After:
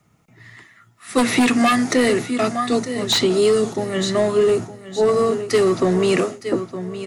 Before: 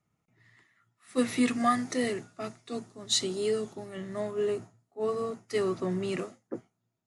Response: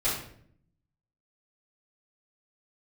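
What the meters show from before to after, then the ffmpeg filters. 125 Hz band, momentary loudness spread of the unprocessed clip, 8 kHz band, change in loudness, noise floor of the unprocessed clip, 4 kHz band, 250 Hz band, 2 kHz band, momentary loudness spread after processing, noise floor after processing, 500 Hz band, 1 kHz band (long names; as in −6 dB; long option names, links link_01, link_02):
+13.0 dB, 14 LU, +9.0 dB, +12.5 dB, −81 dBFS, +11.0 dB, +12.0 dB, +14.5 dB, 7 LU, −56 dBFS, +14.0 dB, +11.0 dB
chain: -filter_complex "[0:a]aecho=1:1:913|1826|2739:0.168|0.0436|0.0113,aeval=exprs='0.2*sin(PI/2*2.24*val(0)/0.2)':channel_layout=same,acrossover=split=220|3700[link_01][link_02][link_03];[link_01]acompressor=threshold=-35dB:ratio=4[link_04];[link_02]acompressor=threshold=-21dB:ratio=4[link_05];[link_03]acompressor=threshold=-35dB:ratio=4[link_06];[link_04][link_05][link_06]amix=inputs=3:normalize=0,volume=7dB"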